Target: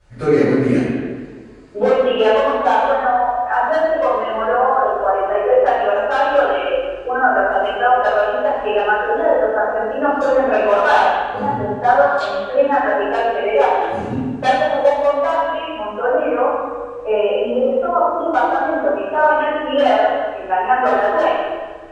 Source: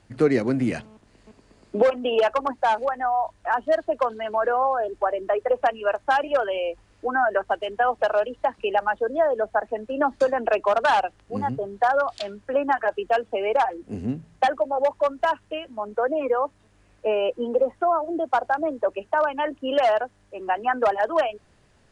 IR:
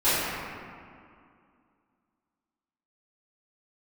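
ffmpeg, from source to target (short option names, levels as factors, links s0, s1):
-filter_complex "[0:a]lowshelf=f=63:g=6[s0];[1:a]atrim=start_sample=2205,asetrate=66150,aresample=44100[s1];[s0][s1]afir=irnorm=-1:irlink=0,asplit=3[s2][s3][s4];[s2]afade=t=out:st=13.81:d=0.02[s5];[s3]adynamicequalizer=threshold=0.0501:dfrequency=2500:dqfactor=0.7:tfrequency=2500:tqfactor=0.7:attack=5:release=100:ratio=0.375:range=3:mode=boostabove:tftype=highshelf,afade=t=in:st=13.81:d=0.02,afade=t=out:st=15.05:d=0.02[s6];[s4]afade=t=in:st=15.05:d=0.02[s7];[s5][s6][s7]amix=inputs=3:normalize=0,volume=0.422"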